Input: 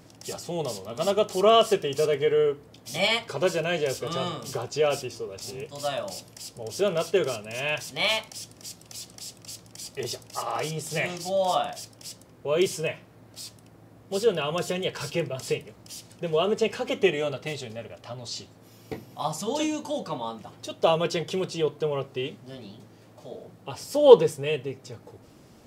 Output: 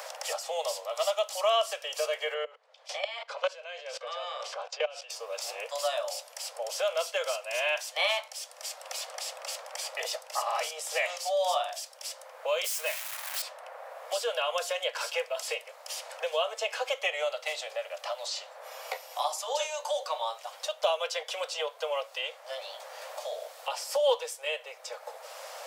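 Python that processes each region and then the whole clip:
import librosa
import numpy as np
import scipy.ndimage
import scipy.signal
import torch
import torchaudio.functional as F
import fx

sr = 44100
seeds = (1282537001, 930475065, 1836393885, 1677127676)

y = fx.chain(x, sr, fx.lowpass(hz=4200.0, slope=12),
    fx.low_shelf(hz=80.0, db=9.0),
    fx.level_steps(step_db=21), at=(2.34, 5.1))
y = fx.chain(y, sr, fx.crossing_spikes(level_db=-22.5),
    fx.highpass(hz=730.0, slope=12), at=(12.64, 13.42))
y = scipy.signal.sosfilt(scipy.signal.butter(16, 510.0, 'highpass', fs=sr, output='sos'), y)
y = fx.band_squash(y, sr, depth_pct=70)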